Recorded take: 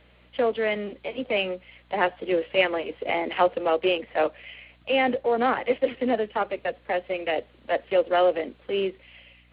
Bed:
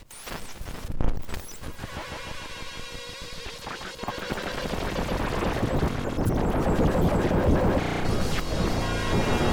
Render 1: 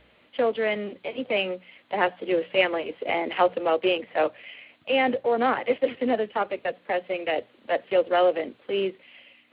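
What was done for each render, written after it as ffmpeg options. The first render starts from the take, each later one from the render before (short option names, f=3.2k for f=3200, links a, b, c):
-af "bandreject=f=60:t=h:w=4,bandreject=f=120:t=h:w=4,bandreject=f=180:t=h:w=4"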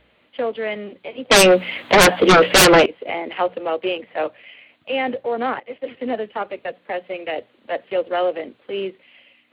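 -filter_complex "[0:a]asettb=1/sr,asplit=3[a][b][c];[a]atrim=end=1.314[d];[b]atrim=start=1.31:end=2.86,asetpts=PTS-STARTPTS,afade=t=in:d=0.004:c=qsin,afade=t=out:st=1.546:d=0.004:c=qsin,aeval=exprs='0.447*sin(PI/2*7.94*val(0)/0.447)':c=same[e];[c]atrim=start=2.856[f];[d][e]acrossfade=d=0.004:c1=hsin:c2=qsin[g];[g][f]acrossfade=d=0.004:c1=qsin:c2=hsin,asplit=2[h][i];[h]atrim=end=5.6,asetpts=PTS-STARTPTS,afade=t=out:st=5.596:d=0.004:c=hsin:silence=0.149624[j];[i]atrim=start=5.6,asetpts=PTS-STARTPTS,afade=t=in:d=0.51:silence=0.149624[k];[j][k]concat=n=2:v=0:a=1"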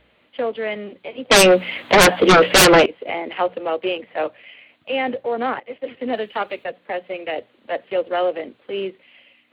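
-filter_complex "[0:a]asettb=1/sr,asplit=3[a][b][c];[a]atrim=end=6.134[d];[b]atrim=start=6.13:end=6.64,asetpts=PTS-STARTPTS,afade=t=in:d=0.004:c=qsin,afade=t=out:st=0.506:d=0.004:c=qsin,highshelf=f=2.1k:g=11.5[e];[c]atrim=start=6.636[f];[d][e]acrossfade=d=0.004:c1=hsin:c2=qsin[g];[g][f]acrossfade=d=0.004:c1=qsin:c2=hsin"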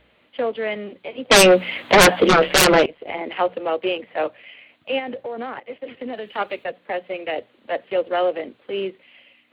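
-filter_complex "[0:a]asettb=1/sr,asplit=3[a][b][c];[a]atrim=end=2.274[d];[b]atrim=start=2.27:end=3.21,asetpts=PTS-STARTPTS,afade=t=in:d=0.004:c=qsin,afade=t=out:st=0.936:d=0.004:c=qsin,tremolo=f=150:d=0.71[e];[c]atrim=start=3.206[f];[d][e]acrossfade=d=0.004:c1=hsin:c2=qsin[g];[g][f]acrossfade=d=0.004:c1=qsin:c2=hsin,asplit=3[h][i][j];[h]afade=t=out:st=4.98:d=0.02[k];[i]acompressor=threshold=-26dB:ratio=6:attack=3.2:release=140:knee=1:detection=peak,afade=t=in:st=4.98:d=0.02,afade=t=out:st=6.37:d=0.02[l];[j]afade=t=in:st=6.37:d=0.02[m];[k][l][m]amix=inputs=3:normalize=0"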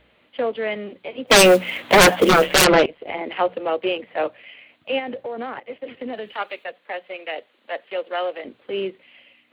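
-filter_complex "[0:a]asettb=1/sr,asplit=3[a][b][c];[a]atrim=end=1.274[d];[b]atrim=start=1.27:end=2.59,asetpts=PTS-STARTPTS,afade=t=in:d=0.004:c=qsin,afade=t=out:st=1.316:d=0.004:c=qsin,acrusher=bits=5:mode=log:mix=0:aa=0.000001[e];[c]atrim=start=2.586[f];[d][e]acrossfade=d=0.004:c1=hsin:c2=qsin[g];[g][f]acrossfade=d=0.004:c1=qsin:c2=hsin,asettb=1/sr,asplit=3[h][i][j];[h]atrim=end=6.344[k];[i]atrim=start=6.34:end=8.45,asetpts=PTS-STARTPTS,afade=t=in:d=0.004:c=qsin,afade=t=out:st=2.106:d=0.004:c=qsin,highpass=f=880:p=1[l];[j]atrim=start=8.446[m];[k][l]acrossfade=d=0.004:c1=hsin:c2=qsin[n];[n][m]acrossfade=d=0.004:c1=qsin:c2=hsin"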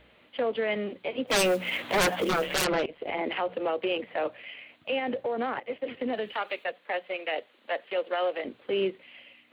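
-af "acompressor=threshold=-19dB:ratio=6,alimiter=limit=-20dB:level=0:latency=1:release=48"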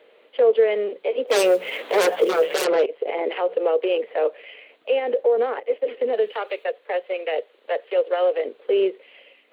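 -af "highpass=f=450:t=q:w=4.9"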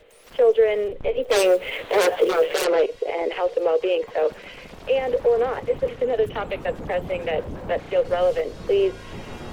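-filter_complex "[1:a]volume=-12.5dB[a];[0:a][a]amix=inputs=2:normalize=0"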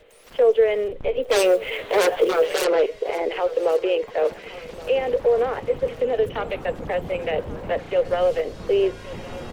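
-af "aecho=1:1:1121|2242|3363|4484:0.119|0.0606|0.0309|0.0158"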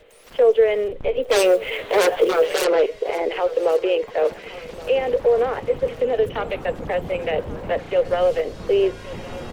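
-af "volume=1.5dB"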